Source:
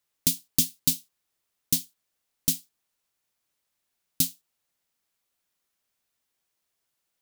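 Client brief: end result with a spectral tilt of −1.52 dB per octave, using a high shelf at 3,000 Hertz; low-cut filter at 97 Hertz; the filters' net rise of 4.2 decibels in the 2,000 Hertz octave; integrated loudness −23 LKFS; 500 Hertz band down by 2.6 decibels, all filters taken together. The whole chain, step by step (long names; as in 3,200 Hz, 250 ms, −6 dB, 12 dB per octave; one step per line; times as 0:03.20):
high-pass filter 97 Hz
parametric band 500 Hz −4 dB
parametric band 2,000 Hz +8.5 dB
high-shelf EQ 3,000 Hz −5 dB
level +7.5 dB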